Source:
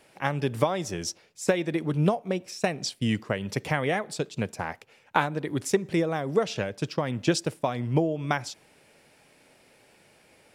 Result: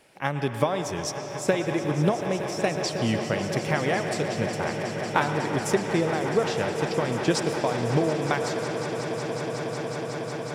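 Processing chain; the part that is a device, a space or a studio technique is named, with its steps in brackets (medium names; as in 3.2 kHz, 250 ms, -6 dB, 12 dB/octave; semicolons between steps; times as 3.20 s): filtered reverb send (on a send at -6 dB: high-pass 330 Hz + low-pass 6.2 kHz + reverberation RT60 4.0 s, pre-delay 98 ms); on the sum: echo with a slow build-up 183 ms, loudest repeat 8, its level -14.5 dB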